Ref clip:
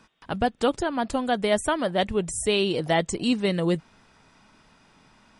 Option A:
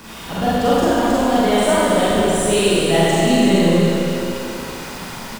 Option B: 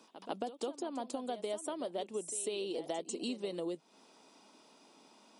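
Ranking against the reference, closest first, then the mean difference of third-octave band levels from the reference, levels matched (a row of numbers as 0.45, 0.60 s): B, A; 7.0, 15.0 dB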